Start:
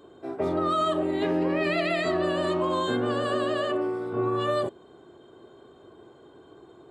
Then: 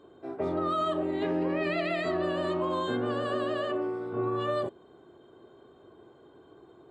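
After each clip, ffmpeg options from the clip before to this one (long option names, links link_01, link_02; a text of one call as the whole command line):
ffmpeg -i in.wav -af "highshelf=frequency=5900:gain=-10,volume=-3.5dB" out.wav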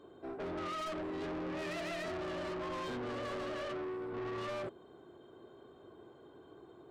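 ffmpeg -i in.wav -af "asoftclip=type=tanh:threshold=-36dB,volume=-1.5dB" out.wav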